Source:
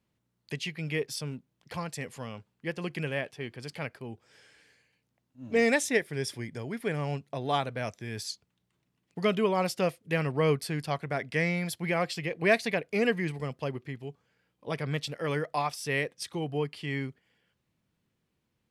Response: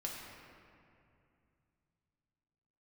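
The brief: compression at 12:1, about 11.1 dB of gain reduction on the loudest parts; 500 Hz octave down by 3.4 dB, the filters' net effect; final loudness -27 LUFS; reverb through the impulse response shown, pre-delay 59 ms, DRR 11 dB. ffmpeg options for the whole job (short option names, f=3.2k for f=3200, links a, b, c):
-filter_complex "[0:a]equalizer=f=500:t=o:g=-4,acompressor=threshold=-32dB:ratio=12,asplit=2[a][b];[1:a]atrim=start_sample=2205,adelay=59[c];[b][c]afir=irnorm=-1:irlink=0,volume=-11.5dB[d];[a][d]amix=inputs=2:normalize=0,volume=11dB"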